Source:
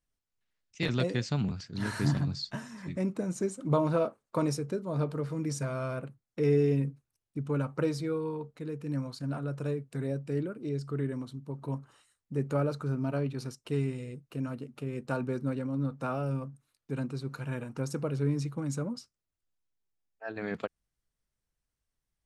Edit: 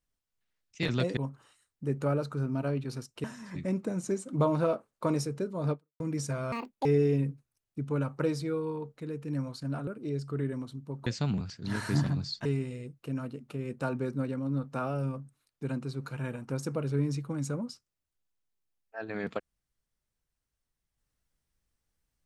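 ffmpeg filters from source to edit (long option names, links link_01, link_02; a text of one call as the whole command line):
ffmpeg -i in.wav -filter_complex "[0:a]asplit=9[link_01][link_02][link_03][link_04][link_05][link_06][link_07][link_08][link_09];[link_01]atrim=end=1.172[link_10];[link_02]atrim=start=11.658:end=13.732[link_11];[link_03]atrim=start=2.558:end=5.32,asetpts=PTS-STARTPTS,afade=type=out:start_time=2.492:duration=0.27:curve=exp[link_12];[link_04]atrim=start=5.32:end=5.844,asetpts=PTS-STARTPTS,afade=type=in:duration=0.004:curve=hsin[link_13];[link_05]atrim=start=5.84:end=6.44,asetpts=PTS-STARTPTS,asetrate=79380,aresample=44100[link_14];[link_06]atrim=start=6.436:end=9.462[link_15];[link_07]atrim=start=10.468:end=11.662[link_16];[link_08]atrim=start=1.168:end=2.562[link_17];[link_09]atrim=start=13.728[link_18];[link_10][link_11]acrossfade=duration=0.004:curve1=hsin:curve2=hsin[link_19];[link_12][link_13]concat=n=2:v=0:a=1[link_20];[link_19][link_20]acrossfade=duration=0.004:curve1=hsin:curve2=hsin[link_21];[link_21][link_14]acrossfade=duration=0.004:curve1=hsin:curve2=hsin[link_22];[link_22][link_15]acrossfade=duration=0.004:curve1=hsin:curve2=hsin[link_23];[link_23][link_16]acrossfade=duration=0.004:curve1=hsin:curve2=hsin[link_24];[link_24][link_17]acrossfade=duration=0.004:curve1=hsin:curve2=hsin[link_25];[link_25][link_18]acrossfade=duration=0.004:curve1=hsin:curve2=hsin" out.wav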